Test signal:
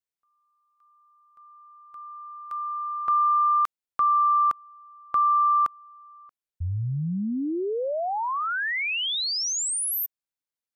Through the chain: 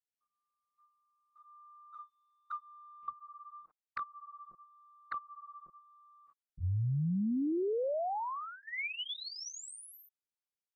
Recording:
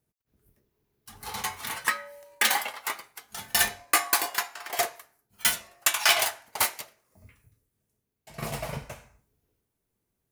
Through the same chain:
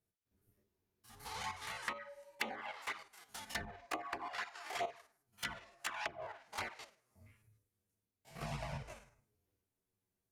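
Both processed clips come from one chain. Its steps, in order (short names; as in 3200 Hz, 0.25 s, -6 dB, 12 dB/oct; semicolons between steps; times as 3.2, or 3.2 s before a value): stepped spectrum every 50 ms; treble ducked by the level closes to 310 Hz, closed at -19.5 dBFS; envelope flanger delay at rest 10.8 ms, full sweep at -28 dBFS; gain -4 dB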